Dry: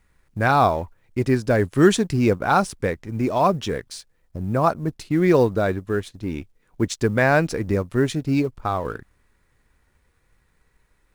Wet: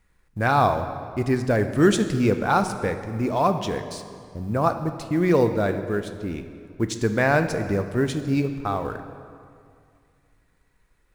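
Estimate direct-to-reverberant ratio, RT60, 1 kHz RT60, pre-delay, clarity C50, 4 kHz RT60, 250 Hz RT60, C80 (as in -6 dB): 8.0 dB, 2.2 s, 2.2 s, 4 ms, 9.5 dB, 1.6 s, 2.4 s, 10.5 dB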